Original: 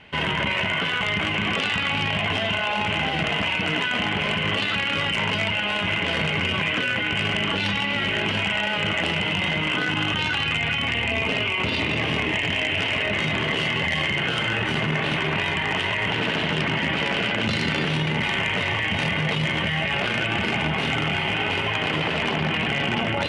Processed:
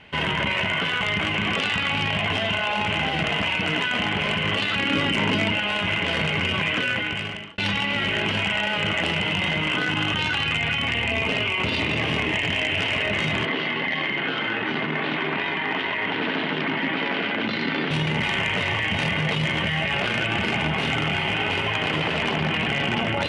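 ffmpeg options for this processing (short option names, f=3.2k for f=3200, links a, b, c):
-filter_complex "[0:a]asettb=1/sr,asplit=3[a][b][c];[a]atrim=end=4.794[d];[b]atrim=start=4.79:end=5.59,asetpts=PTS-STARTPTS,afade=t=in:d=0.004:c=qsin,afade=t=out:st=0.796:d=0.004:c=qsin,equalizer=f=280:t=o:w=0.97:g=11.5[e];[c]atrim=start=5.586[f];[d][e]acrossfade=d=0.004:c1=hsin:c2=qsin[g];[g][f]acrossfade=d=0.004:c1=qsin:c2=hsin,asettb=1/sr,asplit=3[h][i][j];[h]atrim=end=13.454[k];[i]atrim=start=13.45:end=17.91,asetpts=PTS-STARTPTS,afade=t=in:d=0.004:c=qsin,afade=t=out:st=4.456:d=0.004:c=qsin,highpass=230,equalizer=f=270:t=q:w=4:g=7,equalizer=f=580:t=q:w=4:g=-3,equalizer=f=2.8k:t=q:w=4:g=-5,lowpass=f=4.1k:w=0.5412,lowpass=f=4.1k:w=1.3066[l];[j]atrim=start=17.906[m];[k][l]acrossfade=d=0.004:c1=hsin:c2=qsin[n];[n][m]acrossfade=d=0.004:c1=qsin:c2=hsin,asplit=2[o][p];[o]atrim=end=7.58,asetpts=PTS-STARTPTS,afade=t=out:st=6.92:d=0.66[q];[p]atrim=start=7.58,asetpts=PTS-STARTPTS,afade=t=in:d=0.004:c=hsin[r];[q][r]concat=n=2:v=0:a=1"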